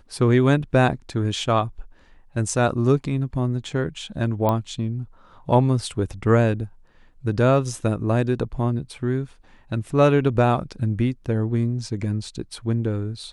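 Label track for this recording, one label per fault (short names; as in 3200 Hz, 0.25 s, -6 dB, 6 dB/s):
4.490000	4.490000	pop -10 dBFS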